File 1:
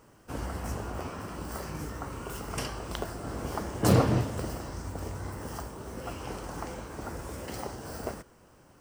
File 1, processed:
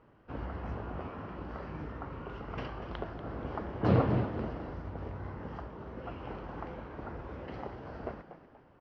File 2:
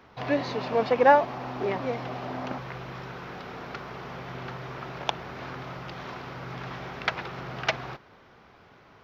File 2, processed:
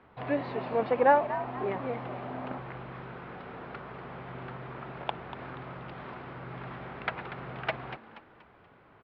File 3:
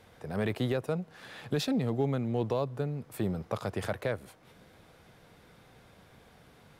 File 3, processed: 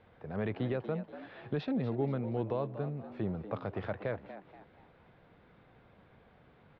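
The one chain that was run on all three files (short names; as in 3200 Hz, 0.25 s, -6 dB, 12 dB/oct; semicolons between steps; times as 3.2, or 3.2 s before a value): Bessel low-pass 2300 Hz, order 6; frequency-shifting echo 0.239 s, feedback 37%, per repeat +96 Hz, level -12.5 dB; gain -3.5 dB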